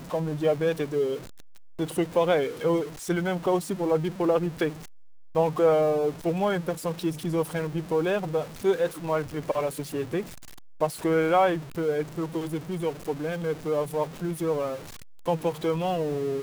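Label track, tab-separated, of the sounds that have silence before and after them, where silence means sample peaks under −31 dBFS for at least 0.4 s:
1.790000	4.700000	sound
5.360000	10.220000	sound
10.810000	14.760000	sound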